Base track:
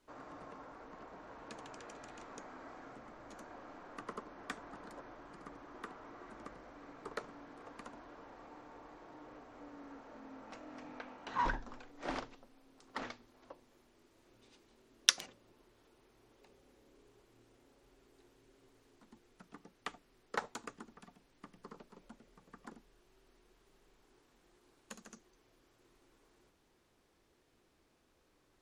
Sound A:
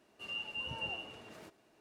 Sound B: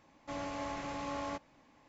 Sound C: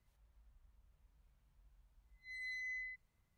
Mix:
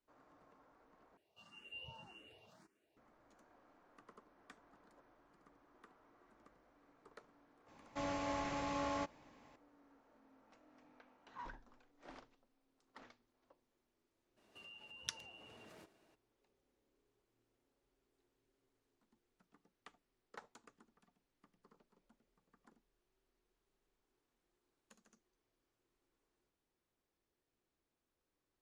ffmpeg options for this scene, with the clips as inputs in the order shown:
-filter_complex "[1:a]asplit=2[a][b];[0:a]volume=-16.5dB[c];[a]asplit=2[d][e];[e]afreqshift=1.8[f];[d][f]amix=inputs=2:normalize=1[g];[b]acompressor=threshold=-50dB:ratio=6:attack=3.2:release=140:knee=1:detection=peak[h];[c]asplit=2[i][j];[i]atrim=end=1.174[k];[g]atrim=end=1.8,asetpts=PTS-STARTPTS,volume=-10dB[l];[j]atrim=start=2.966[m];[2:a]atrim=end=1.88,asetpts=PTS-STARTPTS,volume=-0.5dB,afade=t=in:d=0.004:c=hsin,afade=t=out:st=1.876:d=0.004:c=hsin,adelay=7680[n];[h]atrim=end=1.8,asetpts=PTS-STARTPTS,volume=-4.5dB,afade=t=in:d=0.02,afade=t=out:st=1.78:d=0.02,adelay=14360[o];[k][l]acrossfade=d=0.004:c1=hsin:c2=hsin[p];[p][m]acrossfade=d=0.004:c1=hsin:c2=hsin[q];[q][n][o]amix=inputs=3:normalize=0"

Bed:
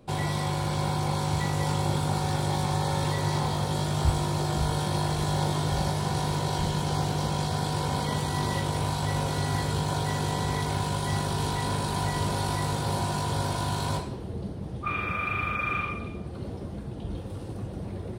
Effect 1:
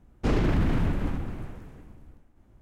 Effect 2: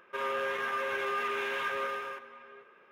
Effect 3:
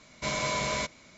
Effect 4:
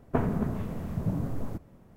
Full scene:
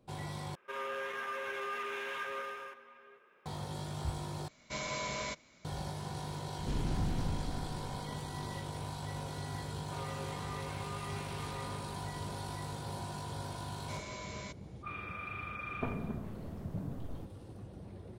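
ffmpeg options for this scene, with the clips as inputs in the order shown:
-filter_complex "[2:a]asplit=2[a][b];[3:a]asplit=2[c][d];[0:a]volume=-13dB[e];[a]equalizer=f=7.8k:t=o:w=1.4:g=4[f];[1:a]acrossover=split=270|3000[g][h][i];[h]acompressor=threshold=-37dB:ratio=6:attack=3.2:release=140:knee=2.83:detection=peak[j];[g][j][i]amix=inputs=3:normalize=0[k];[b]bandreject=f=1.6k:w=6.3[l];[e]asplit=3[m][n][o];[m]atrim=end=0.554[p];[f]atrim=end=2.91,asetpts=PTS-STARTPTS,volume=-6.5dB[q];[n]atrim=start=3.456:end=4.484[r];[c]atrim=end=1.17,asetpts=PTS-STARTPTS,volume=-8dB[s];[o]atrim=start=5.646[t];[k]atrim=end=2.61,asetpts=PTS-STARTPTS,volume=-10dB,afade=t=in:d=0.004:c=hsin,afade=t=out:st=2.606:d=0.004:c=hsin,adelay=6430[u];[l]atrim=end=2.91,asetpts=PTS-STARTPTS,volume=-13dB,afade=t=in:d=0.004:c=hsin,afade=t=out:st=2.906:d=0.004:c=hsin,adelay=431298S[v];[d]atrim=end=1.17,asetpts=PTS-STARTPTS,volume=-15.5dB,afade=t=in:d=0.004:c=hsin,afade=t=out:st=1.166:d=0.004:c=hsin,adelay=13660[w];[4:a]atrim=end=1.96,asetpts=PTS-STARTPTS,volume=-10.5dB,afade=t=in:d=0.004:c=hsin,afade=t=out:st=1.956:d=0.004:c=hsin,adelay=15680[x];[p][q]acrossfade=d=0.004:c1=hsin:c2=hsin[y];[y][r]acrossfade=d=0.004:c1=hsin:c2=hsin[z];[z][s]acrossfade=d=0.004:c1=hsin:c2=hsin[aa];[aa][t]acrossfade=d=0.004:c1=hsin:c2=hsin[ab];[ab][u][v][w][x]amix=inputs=5:normalize=0"

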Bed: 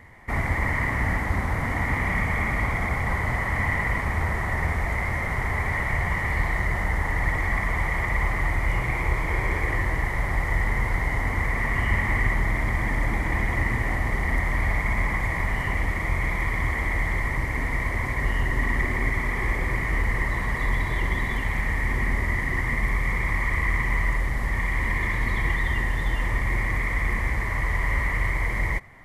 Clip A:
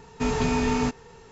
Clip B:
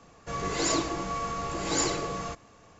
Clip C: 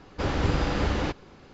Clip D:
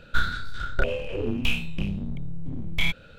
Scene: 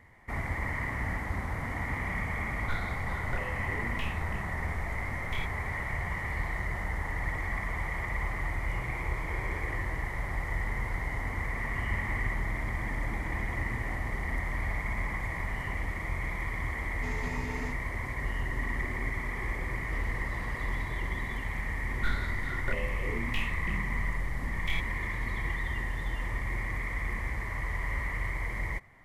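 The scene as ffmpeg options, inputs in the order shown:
-filter_complex "[4:a]asplit=2[a][b];[0:a]volume=-8.5dB[c];[3:a]acompressor=threshold=-25dB:ratio=6:attack=3.2:release=140:knee=1:detection=peak[d];[a]atrim=end=3.18,asetpts=PTS-STARTPTS,volume=-14dB,afade=t=in:d=0.004:c=hsin,afade=t=out:st=3.176:d=0.004:c=hsin,adelay=2540[e];[1:a]atrim=end=1.31,asetpts=PTS-STARTPTS,volume=-16dB,afade=t=in:d=0.004:c=hsin,afade=t=out:st=1.306:d=0.004:c=hsin,adelay=16820[f];[d]atrim=end=1.53,asetpts=PTS-STARTPTS,volume=-18dB,afade=t=in:d=0.004:c=hsin,afade=t=out:st=1.526:d=0.004:c=hsin,adelay=19730[g];[b]atrim=end=3.18,asetpts=PTS-STARTPTS,volume=-10dB,afade=t=in:d=0.004:c=hsin,afade=t=out:st=3.176:d=0.004:c=hsin,adelay=21890[h];[c][e][f][g][h]amix=inputs=5:normalize=0"

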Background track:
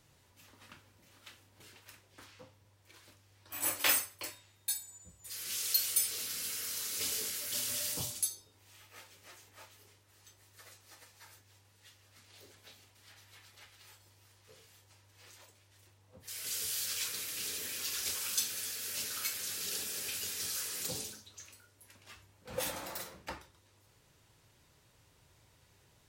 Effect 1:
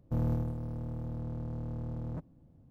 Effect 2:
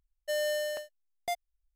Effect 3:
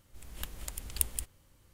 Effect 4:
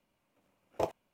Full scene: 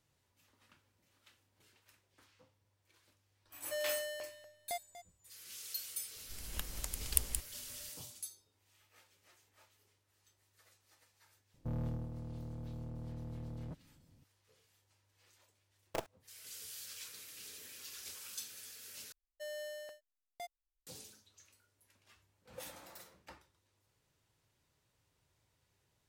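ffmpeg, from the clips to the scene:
-filter_complex "[2:a]asplit=2[a][b];[0:a]volume=-12dB[c];[a]aecho=1:1:241|482|723:0.211|0.0507|0.0122[d];[1:a]volume=28dB,asoftclip=hard,volume=-28dB[e];[4:a]acrusher=bits=5:dc=4:mix=0:aa=0.000001[f];[c]asplit=2[g][h];[g]atrim=end=19.124[i];[b]atrim=end=1.75,asetpts=PTS-STARTPTS,volume=-13.5dB[j];[h]atrim=start=20.866[k];[d]atrim=end=1.75,asetpts=PTS-STARTPTS,volume=-7.5dB,afade=t=in:d=0.004:c=hsin,afade=t=out:st=1.746:d=0.004:c=hsin,adelay=3430[l];[3:a]atrim=end=1.73,asetpts=PTS-STARTPTS,volume=-1dB,afade=t=in:d=0.004:c=hsin,afade=t=out:st=1.726:d=0.004:c=hsin,adelay=6160[m];[e]atrim=end=2.7,asetpts=PTS-STARTPTS,volume=-7dB,afade=t=in:d=0.004:c=hsin,afade=t=out:st=2.696:d=0.004:c=hsin,adelay=508914S[n];[f]atrim=end=1.13,asetpts=PTS-STARTPTS,volume=-7.5dB,afade=t=in:d=0.004:c=hsin,afade=t=out:st=1.126:d=0.004:c=hsin,adelay=15150[o];[i][j]acrossfade=d=0.004:c1=hsin:c2=hsin[p];[p][k]acrossfade=d=0.004:c1=hsin:c2=hsin[q];[q][l][m][n][o]amix=inputs=5:normalize=0"

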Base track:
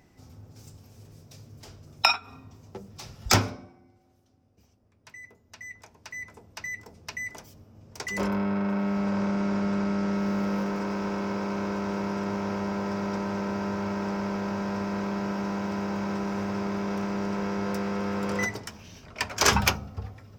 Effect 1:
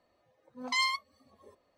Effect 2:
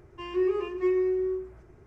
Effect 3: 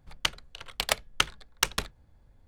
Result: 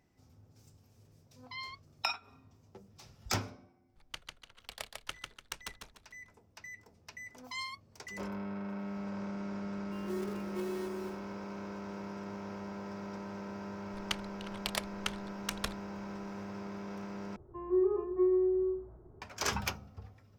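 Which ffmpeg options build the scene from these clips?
-filter_complex "[1:a]asplit=2[a][b];[3:a]asplit=2[c][d];[2:a]asplit=2[e][f];[0:a]volume=-12.5dB[g];[a]aresample=11025,aresample=44100[h];[c]aecho=1:1:147|294|441|588:0.631|0.221|0.0773|0.0271[i];[e]acrusher=bits=3:mode=log:mix=0:aa=0.000001[j];[d]alimiter=limit=-9dB:level=0:latency=1:release=71[k];[f]lowpass=f=1.1k:w=0.5412,lowpass=f=1.1k:w=1.3066[l];[g]asplit=2[m][n];[m]atrim=end=17.364[o];[l]atrim=end=1.86,asetpts=PTS-STARTPTS,volume=-2.5dB[p];[n]atrim=start=19.216[q];[h]atrim=end=1.77,asetpts=PTS-STARTPTS,volume=-14.5dB,afade=t=in:d=0.004:c=hsin,afade=t=out:st=1.766:d=0.004:c=hsin,adelay=790[r];[i]atrim=end=2.47,asetpts=PTS-STARTPTS,volume=-17dB,afade=t=in:d=0.004:c=hsin,afade=t=out:st=2.466:d=0.004:c=hsin,adelay=171549S[s];[b]atrim=end=1.77,asetpts=PTS-STARTPTS,volume=-11.5dB,afade=t=in:d=0.004:c=hsin,afade=t=out:st=1.766:d=0.004:c=hsin,adelay=6790[t];[j]atrim=end=1.86,asetpts=PTS-STARTPTS,volume=-14dB,afade=t=in:d=0.004:c=hsin,afade=t=out:st=1.856:d=0.004:c=hsin,adelay=9730[u];[k]atrim=end=2.47,asetpts=PTS-STARTPTS,volume=-6dB,afade=t=in:d=0.004:c=hsin,afade=t=out:st=2.466:d=0.004:c=hsin,adelay=13860[v];[o][p]acrossfade=d=0.004:c1=hsin:c2=hsin[w];[w][q]acrossfade=d=0.004:c1=hsin:c2=hsin[x];[x][r][s][t][u][v]amix=inputs=6:normalize=0"

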